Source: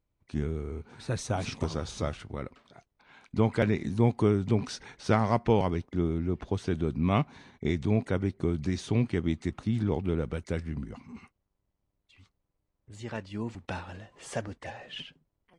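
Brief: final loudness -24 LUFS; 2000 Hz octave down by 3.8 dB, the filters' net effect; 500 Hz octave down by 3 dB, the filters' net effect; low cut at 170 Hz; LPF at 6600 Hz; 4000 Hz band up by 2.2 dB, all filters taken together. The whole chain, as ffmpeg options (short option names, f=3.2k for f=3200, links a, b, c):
-af "highpass=170,lowpass=6.6k,equalizer=f=500:t=o:g=-3.5,equalizer=f=2k:t=o:g=-6,equalizer=f=4k:t=o:g=5.5,volume=10dB"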